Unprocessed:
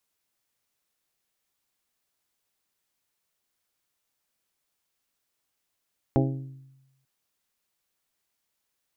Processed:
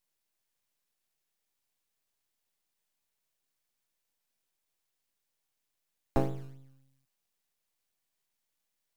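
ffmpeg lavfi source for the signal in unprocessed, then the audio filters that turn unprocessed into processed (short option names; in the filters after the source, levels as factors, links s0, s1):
-f lavfi -i "aevalsrc='0.1*pow(10,-3*t/1.02)*sin(2*PI*134*t)+0.0841*pow(10,-3*t/0.628)*sin(2*PI*268*t)+0.0708*pow(10,-3*t/0.553)*sin(2*PI*321.6*t)+0.0596*pow(10,-3*t/0.473)*sin(2*PI*402*t)+0.0501*pow(10,-3*t/0.387)*sin(2*PI*536*t)+0.0422*pow(10,-3*t/0.331)*sin(2*PI*670*t)+0.0355*pow(10,-3*t/0.291)*sin(2*PI*804*t)':d=0.89:s=44100"
-filter_complex "[0:a]acrossover=split=120|490|790[s0][s1][s2][s3];[s0]acrusher=samples=23:mix=1:aa=0.000001:lfo=1:lforange=23:lforate=3.6[s4];[s4][s1][s2][s3]amix=inputs=4:normalize=0,equalizer=f=1300:w=5.2:g=-5.5,aeval=exprs='max(val(0),0)':c=same"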